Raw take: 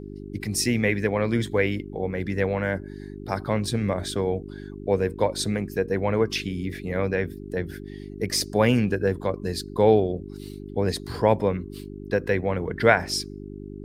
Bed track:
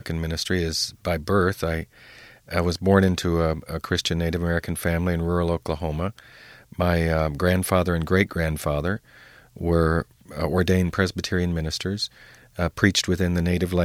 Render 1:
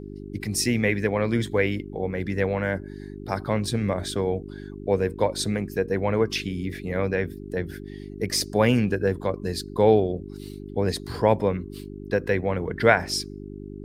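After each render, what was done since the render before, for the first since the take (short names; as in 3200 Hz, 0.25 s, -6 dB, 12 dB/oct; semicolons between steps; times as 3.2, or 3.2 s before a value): nothing audible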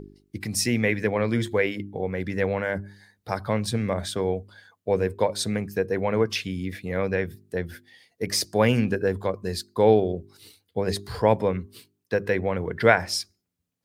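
de-hum 50 Hz, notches 8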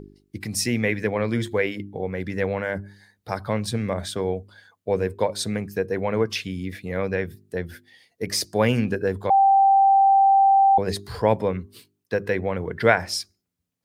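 9.3–10.78 bleep 783 Hz -12.5 dBFS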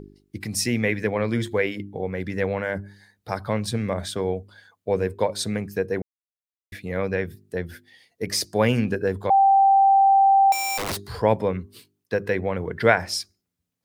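6.02–6.72 mute; 10.52–11.14 wrapped overs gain 22 dB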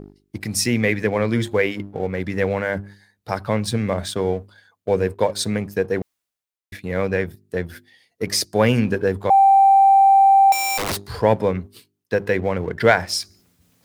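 reverse; upward compressor, threshold -38 dBFS; reverse; sample leveller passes 1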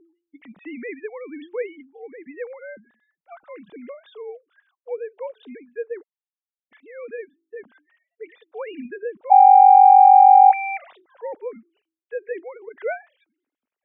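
sine-wave speech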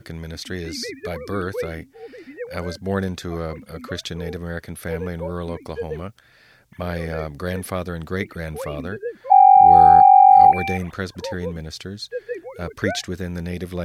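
add bed track -6 dB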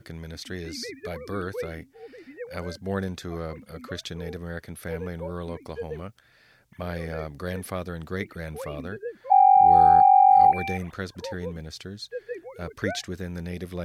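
gain -5.5 dB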